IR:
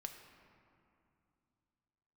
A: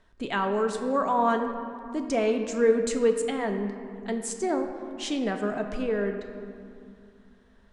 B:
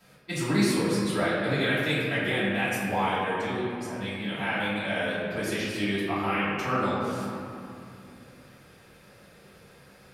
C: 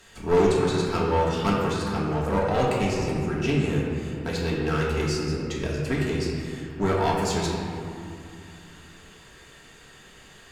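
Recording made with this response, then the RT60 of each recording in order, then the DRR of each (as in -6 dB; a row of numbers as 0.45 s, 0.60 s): A; 2.6 s, 2.5 s, 2.6 s; 4.5 dB, -12.0 dB, -5.5 dB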